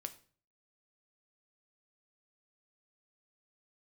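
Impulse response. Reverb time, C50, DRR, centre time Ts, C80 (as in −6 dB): 0.45 s, 15.5 dB, 8.0 dB, 6 ms, 19.5 dB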